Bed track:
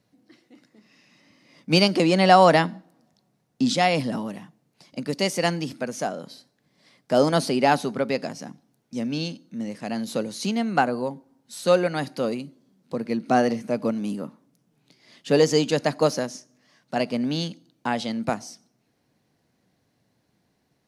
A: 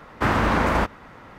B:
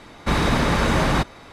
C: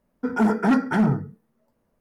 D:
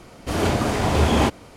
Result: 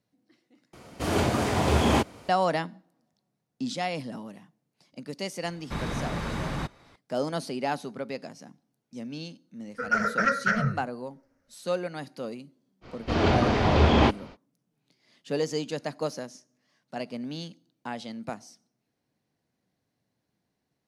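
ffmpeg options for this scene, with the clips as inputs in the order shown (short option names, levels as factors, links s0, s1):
-filter_complex "[4:a]asplit=2[s0][s1];[0:a]volume=0.316[s2];[s0]highpass=68[s3];[2:a]equalizer=f=140:w=1.5:g=5[s4];[3:a]firequalizer=gain_entry='entry(130,0);entry(320,-27);entry(550,8);entry(820,-23);entry(1300,8);entry(2000,7);entry(3400,-7);entry(5700,11);entry(8300,-12)':delay=0.05:min_phase=1[s5];[s1]lowpass=f=4900:w=0.5412,lowpass=f=4900:w=1.3066[s6];[s2]asplit=2[s7][s8];[s7]atrim=end=0.734[s9];[s3]atrim=end=1.56,asetpts=PTS-STARTPTS,volume=0.668[s10];[s8]atrim=start=2.286[s11];[s4]atrim=end=1.52,asetpts=PTS-STARTPTS,volume=0.211,afade=t=in:d=0.004:c=hsin,afade=t=out:st=1.516:d=0.004:c=hsin,adelay=5440[s12];[s5]atrim=end=2,asetpts=PTS-STARTPTS,volume=0.794,afade=t=in:d=0.004:c=hsin,afade=t=out:st=1.996:d=0.004:c=hsin,adelay=9550[s13];[s6]atrim=end=1.56,asetpts=PTS-STARTPTS,volume=0.841,afade=t=in:d=0.05,afade=t=out:st=1.51:d=0.05,adelay=12810[s14];[s9][s10]acrossfade=d=0.004:c1=hsin:c2=hsin[s15];[s15][s11]acrossfade=d=0.004:c1=hsin:c2=hsin[s16];[s16][s12][s13][s14]amix=inputs=4:normalize=0"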